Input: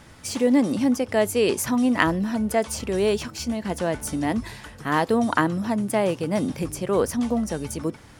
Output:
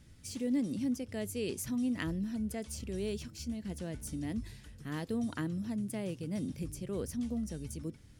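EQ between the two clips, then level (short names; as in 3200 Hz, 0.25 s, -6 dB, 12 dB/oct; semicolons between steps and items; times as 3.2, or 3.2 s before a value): passive tone stack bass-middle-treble 10-0-1; low shelf 130 Hz -7 dB; +8.0 dB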